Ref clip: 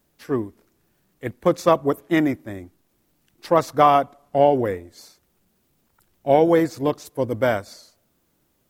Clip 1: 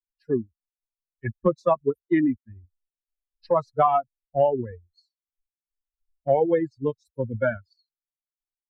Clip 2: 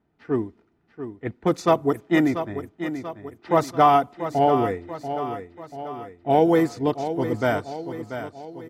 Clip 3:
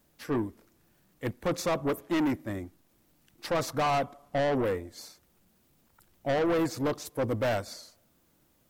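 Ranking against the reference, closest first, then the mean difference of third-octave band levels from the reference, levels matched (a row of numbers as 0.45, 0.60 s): 2, 3, 1; 4.5, 7.0, 11.0 dB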